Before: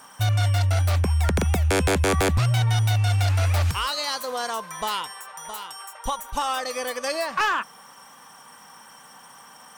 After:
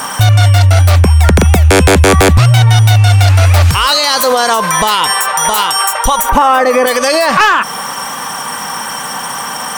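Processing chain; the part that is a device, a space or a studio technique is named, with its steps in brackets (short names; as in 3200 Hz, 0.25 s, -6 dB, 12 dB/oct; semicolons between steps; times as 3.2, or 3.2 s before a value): 6.29–6.86 graphic EQ 250/500/1000/2000/4000/8000 Hz +9/+6/+6/+6/-8/-5 dB; loud club master (compressor 3:1, threshold -26 dBFS, peak gain reduction 9 dB; hard clip -19 dBFS, distortion -39 dB; maximiser +28 dB); gain -1 dB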